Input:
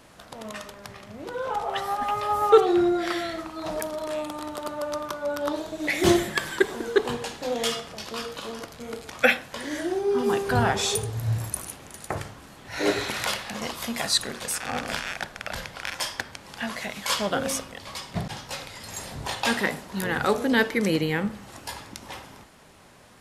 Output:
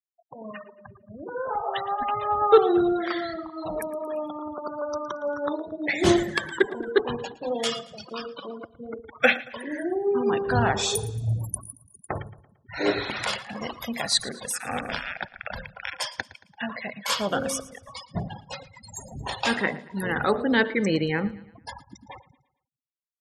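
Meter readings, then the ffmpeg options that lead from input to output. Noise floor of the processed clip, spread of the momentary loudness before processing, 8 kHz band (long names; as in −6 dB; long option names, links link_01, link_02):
−66 dBFS, 16 LU, −2.0 dB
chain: -af "afftfilt=real='re*gte(hypot(re,im),0.0316)':imag='im*gte(hypot(re,im),0.0316)':win_size=1024:overlap=0.75,aecho=1:1:113|226|339|452:0.112|0.0505|0.0227|0.0102"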